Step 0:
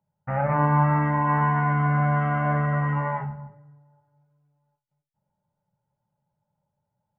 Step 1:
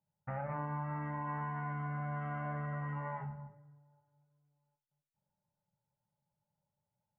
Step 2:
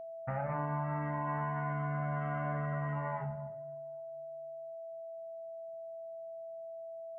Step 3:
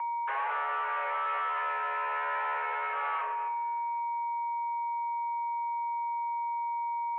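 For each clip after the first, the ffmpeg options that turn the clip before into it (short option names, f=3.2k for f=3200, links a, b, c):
-af "acompressor=threshold=-28dB:ratio=4,volume=-9dB"
-af "aeval=exprs='val(0)+0.00562*sin(2*PI*660*n/s)':c=same,volume=3dB"
-filter_complex "[0:a]asplit=2[a][b];[b]highpass=f=720:p=1,volume=25dB,asoftclip=type=tanh:threshold=-24.5dB[c];[a][c]amix=inputs=2:normalize=0,lowpass=f=2.2k:p=1,volume=-6dB,highpass=f=210:t=q:w=0.5412,highpass=f=210:t=q:w=1.307,lowpass=f=2.5k:t=q:w=0.5176,lowpass=f=2.5k:t=q:w=0.7071,lowpass=f=2.5k:t=q:w=1.932,afreqshift=280"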